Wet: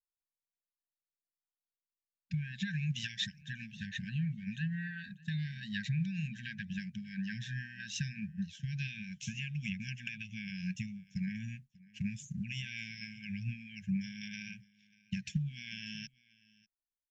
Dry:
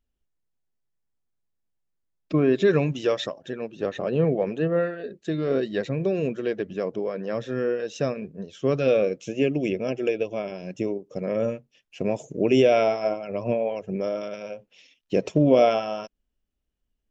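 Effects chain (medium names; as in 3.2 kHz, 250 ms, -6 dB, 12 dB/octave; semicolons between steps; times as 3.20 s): expander -38 dBFS; compression 12:1, threshold -26 dBFS, peak gain reduction 14 dB; brick-wall FIR band-stop 220–1500 Hz; delay 591 ms -23.5 dB; trim +1 dB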